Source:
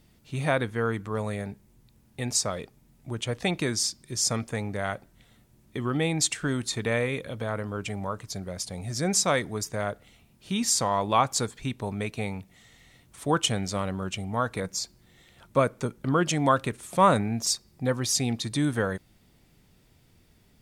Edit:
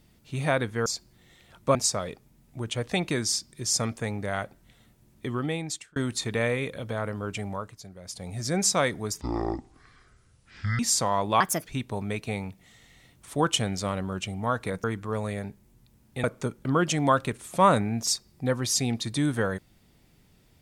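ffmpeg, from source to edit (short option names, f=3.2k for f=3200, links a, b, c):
-filter_complex "[0:a]asplit=12[a][b][c][d][e][f][g][h][i][j][k][l];[a]atrim=end=0.862[m];[b]atrim=start=14.738:end=15.632[n];[c]atrim=start=2.258:end=6.47,asetpts=PTS-STARTPTS,afade=t=out:st=3.522:d=0.69[o];[d]atrim=start=6.47:end=8.31,asetpts=PTS-STARTPTS,afade=t=in:d=0.004:c=hsin,afade=t=out:st=1.4:d=0.44:c=qsin:silence=0.316228[p];[e]atrim=start=8.31:end=8.52,asetpts=PTS-STARTPTS,volume=-10dB[q];[f]atrim=start=8.52:end=9.724,asetpts=PTS-STARTPTS,afade=t=in:d=0.44:c=qsin:silence=0.316228[r];[g]atrim=start=9.72:end=10.59,asetpts=PTS-STARTPTS,asetrate=24255,aresample=44100,atrim=end_sample=69758,asetpts=PTS-STARTPTS[s];[h]atrim=start=10.586:end=11.204[t];[i]atrim=start=11.2:end=11.56,asetpts=PTS-STARTPTS,asetrate=62181,aresample=44100[u];[j]atrim=start=11.556:end=14.742[v];[k]atrim=start=0.858:end=2.262[w];[l]atrim=start=15.628[x];[m][n]acrossfade=d=0.004:c1=hsin:c2=hsin[y];[o][p][q][r]concat=n=4:v=0:a=1[z];[y][z]acrossfade=d=0.004:c1=hsin:c2=hsin[aa];[aa][s]acrossfade=d=0.004:c1=hsin:c2=hsin[ab];[ab][t]acrossfade=d=0.004:c1=hsin:c2=hsin[ac];[ac][u]acrossfade=d=0.004:c1=hsin:c2=hsin[ad];[ad][v]acrossfade=d=0.004:c1=hsin:c2=hsin[ae];[ae][w]acrossfade=d=0.004:c1=hsin:c2=hsin[af];[af][x]acrossfade=d=0.004:c1=hsin:c2=hsin"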